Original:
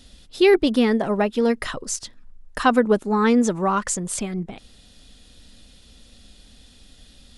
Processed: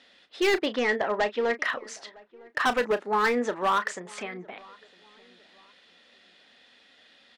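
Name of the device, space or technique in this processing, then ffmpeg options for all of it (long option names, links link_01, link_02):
megaphone: -filter_complex "[0:a]highpass=530,lowpass=2900,equalizer=frequency=1900:width_type=o:width=0.52:gain=7,asoftclip=type=hard:threshold=-19dB,asplit=2[link_01][link_02];[link_02]adelay=33,volume=-13dB[link_03];[link_01][link_03]amix=inputs=2:normalize=0,asettb=1/sr,asplit=3[link_04][link_05][link_06];[link_04]atrim=end=0.664[link_07];[link_05]atrim=start=0.66:end=1.64,asetpts=PTS-STARTPTS,afade=type=in:duration=0.004:curve=qsin,afade=type=out:start_time=0.976:duration=0.004:curve=qsin,lowpass=frequency=7400:width=0.5412,lowpass=frequency=7400:width=1.3066[link_08];[link_06]atrim=start=1.636[link_09];[link_07][link_08]acrossfade=duration=0.004:curve1=hsin:curve2=qsin[link_10];[link_10][link_09]acrossfade=duration=0.004:curve1=qsin:curve2=hsin,asplit=2[link_11][link_12];[link_12]adelay=958,lowpass=frequency=1700:poles=1,volume=-24dB,asplit=2[link_13][link_14];[link_14]adelay=958,lowpass=frequency=1700:poles=1,volume=0.35[link_15];[link_11][link_13][link_15]amix=inputs=3:normalize=0"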